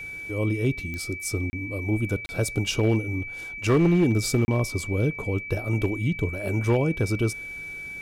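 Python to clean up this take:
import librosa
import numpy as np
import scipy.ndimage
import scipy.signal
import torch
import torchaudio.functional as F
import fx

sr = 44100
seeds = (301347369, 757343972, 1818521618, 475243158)

y = fx.fix_declip(x, sr, threshold_db=-14.5)
y = fx.fix_declick_ar(y, sr, threshold=10.0)
y = fx.notch(y, sr, hz=2300.0, q=30.0)
y = fx.fix_interpolate(y, sr, at_s=(1.5, 2.26, 4.45), length_ms=30.0)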